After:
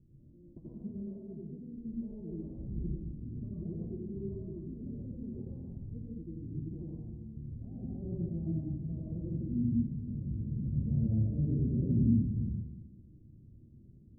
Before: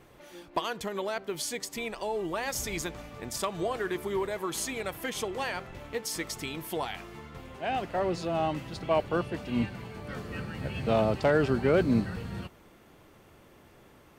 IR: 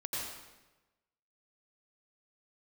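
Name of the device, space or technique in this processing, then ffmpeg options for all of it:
club heard from the street: -filter_complex "[0:a]alimiter=limit=0.106:level=0:latency=1:release=85,lowpass=f=230:w=0.5412,lowpass=f=230:w=1.3066[s0];[1:a]atrim=start_sample=2205[s1];[s0][s1]afir=irnorm=-1:irlink=0,volume=1.26"

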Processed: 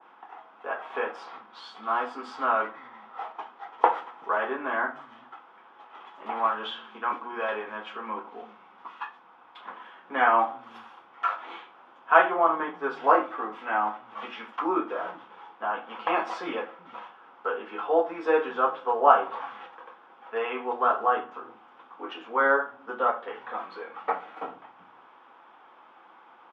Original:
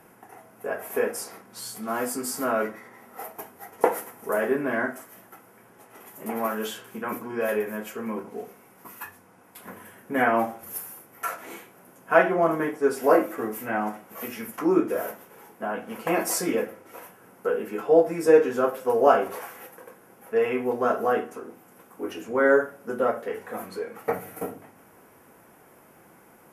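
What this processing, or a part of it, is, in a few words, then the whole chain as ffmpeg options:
phone earpiece: -filter_complex "[0:a]highpass=420,equalizer=f=430:t=q:w=4:g=-7,equalizer=f=610:t=q:w=4:g=-5,equalizer=f=870:t=q:w=4:g=7,equalizer=f=1200:t=q:w=4:g=8,equalizer=f=2000:t=q:w=4:g=-4,equalizer=f=3400:t=q:w=4:g=10,lowpass=f=3500:w=0.5412,lowpass=f=3500:w=1.3066,acrossover=split=160[s0][s1];[s0]adelay=380[s2];[s2][s1]amix=inputs=2:normalize=0,adynamicequalizer=threshold=0.0158:dfrequency=1600:dqfactor=0.7:tfrequency=1600:tqfactor=0.7:attack=5:release=100:ratio=0.375:range=3:mode=cutabove:tftype=highshelf"

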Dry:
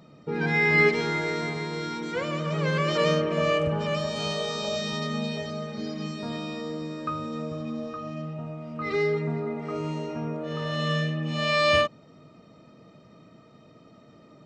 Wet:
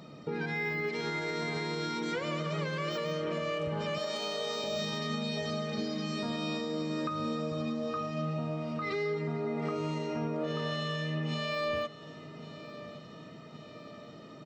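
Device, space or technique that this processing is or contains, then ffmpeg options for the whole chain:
broadcast voice chain: -filter_complex "[0:a]asettb=1/sr,asplit=3[s0][s1][s2];[s0]atrim=end=3.984[s3];[s1]atrim=start=3.98:end=4.64,asetpts=PTS-STARTPTS,afade=t=in:d=0.004:c=qsin,afade=t=out:st=0.656:d=0.004:c=qsin,highpass=f=240:w=0.5412,highpass=f=240:w=1.3066[s4];[s2]atrim=start=4.636[s5];[s3][s4]acrossfade=d=0.004:c1=hsin:c2=qsin[s6];[s6][s5]acrossfade=d=0.004:c1=qsin:c2=hsin,highpass=f=92:p=1,deesser=0.95,acompressor=threshold=0.0251:ratio=6,equalizer=f=4200:t=o:w=1:g=3,alimiter=level_in=1.68:limit=0.0631:level=0:latency=1:release=159,volume=0.596,aecho=1:1:1118|2236|3354|4472|5590:0.15|0.0808|0.0436|0.0236|0.0127,volume=1.5"

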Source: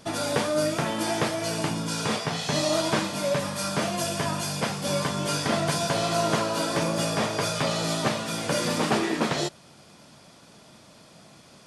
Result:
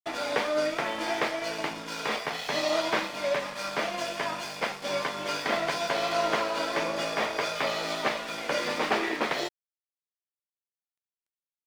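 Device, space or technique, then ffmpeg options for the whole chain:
pocket radio on a weak battery: -af "highpass=370,lowpass=4400,aeval=exprs='sgn(val(0))*max(abs(val(0))-0.0075,0)':c=same,equalizer=f=2100:t=o:w=0.42:g=5.5"

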